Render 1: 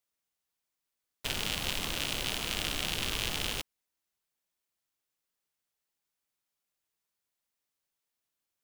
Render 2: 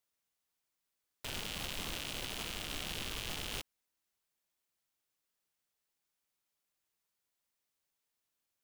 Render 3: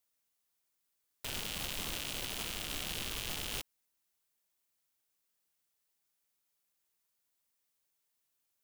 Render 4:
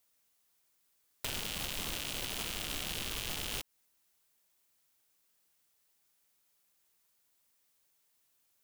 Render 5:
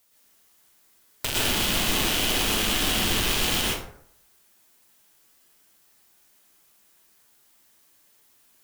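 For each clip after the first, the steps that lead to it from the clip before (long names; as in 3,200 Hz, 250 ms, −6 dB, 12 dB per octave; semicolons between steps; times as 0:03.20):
brickwall limiter −24.5 dBFS, peak gain reduction 11.5 dB
high-shelf EQ 7,100 Hz +6.5 dB
downward compressor 3 to 1, threshold −42 dBFS, peak gain reduction 6.5 dB; level +7 dB
dense smooth reverb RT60 0.66 s, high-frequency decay 0.5×, pre-delay 100 ms, DRR −5 dB; level +9 dB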